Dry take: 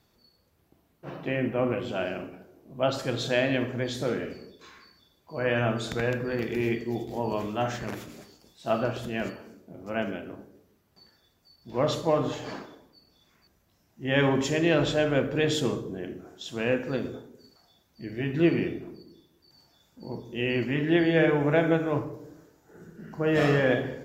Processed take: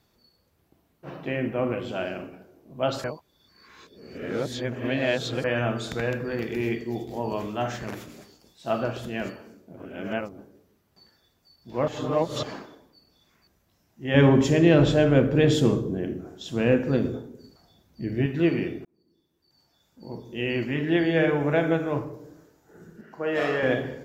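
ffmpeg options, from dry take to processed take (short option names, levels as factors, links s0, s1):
-filter_complex "[0:a]asettb=1/sr,asplit=3[s0][s1][s2];[s0]atrim=end=14.144[s3];[s1]atrim=start=14.14:end=18.26,asetpts=PTS-STARTPTS,afade=t=in:d=0.004:c=qsin,afade=t=out:st=4.116:d=0.004:c=qsin,lowshelf=f=450:g=10[s4];[s2]atrim=start=18.256[s5];[s3][s4]acrossfade=d=0.004:c1=hsin:c2=qsin[s6];[s6][s5]acrossfade=d=0.004:c1=qsin:c2=hsin,asettb=1/sr,asplit=3[s7][s8][s9];[s7]atrim=end=23.014[s10];[s8]atrim=start=23.01:end=23.63,asetpts=PTS-STARTPTS,afade=t=in:d=0.004:c=qsin,afade=t=out:st=0.616:d=0.004:c=qsin,bass=f=250:g=-15,treble=f=4000:g=-6[s11];[s9]atrim=start=23.626[s12];[s10][s11]acrossfade=d=0.004:c1=hsin:c2=qsin[s13];[s13][s12]acrossfade=d=0.004:c1=qsin:c2=hsin,asplit=8[s14][s15][s16][s17][s18][s19][s20][s21];[s14]atrim=end=3.042[s22];[s15]atrim=start=3.038:end=5.442,asetpts=PTS-STARTPTS,areverse[s23];[s16]atrim=start=5.438:end=9.772[s24];[s17]atrim=start=9.768:end=10.382,asetpts=PTS-STARTPTS,areverse[s25];[s18]atrim=start=10.378:end=11.882[s26];[s19]atrim=start=11.878:end=12.432,asetpts=PTS-STARTPTS,areverse[s27];[s20]atrim=start=12.428:end=18.85,asetpts=PTS-STARTPTS,afade=t=out:st=6.418:d=0.004:c=hsin[s28];[s21]atrim=start=18.85,asetpts=PTS-STARTPTS,afade=t=in:d=1.43[s29];[s22][s23]acrossfade=d=0.004:c1=hsin:c2=hsin[s30];[s30][s24]acrossfade=d=0.004:c1=hsin:c2=hsin[s31];[s31][s25]acrossfade=d=0.004:c1=hsin:c2=hsin[s32];[s32][s26]acrossfade=d=0.004:c1=hsin:c2=hsin[s33];[s33][s27]acrossfade=d=0.004:c1=hsin:c2=hsin[s34];[s28][s29]concat=n=2:v=0:a=1[s35];[s34][s35]acrossfade=d=0.004:c1=hsin:c2=hsin"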